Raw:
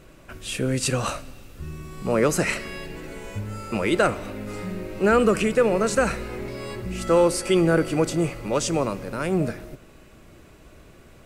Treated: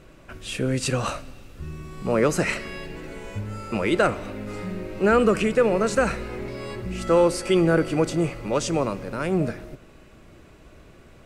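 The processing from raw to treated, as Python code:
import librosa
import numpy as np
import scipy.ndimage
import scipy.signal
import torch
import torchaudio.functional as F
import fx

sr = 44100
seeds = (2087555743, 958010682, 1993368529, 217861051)

y = fx.high_shelf(x, sr, hz=9000.0, db=-9.5)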